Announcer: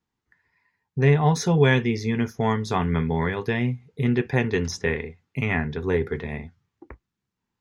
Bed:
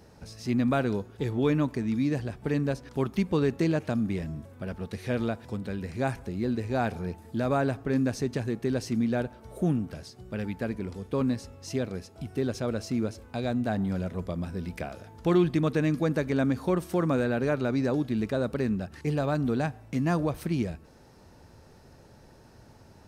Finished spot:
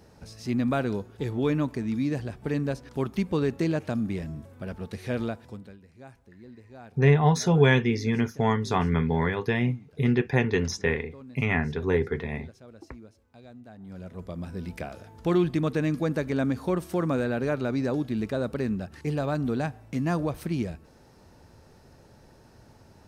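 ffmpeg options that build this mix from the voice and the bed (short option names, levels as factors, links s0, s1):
-filter_complex "[0:a]adelay=6000,volume=0.891[s0];[1:a]volume=7.94,afade=t=out:st=5.21:d=0.58:silence=0.11885,afade=t=in:st=13.78:d=0.87:silence=0.11885[s1];[s0][s1]amix=inputs=2:normalize=0"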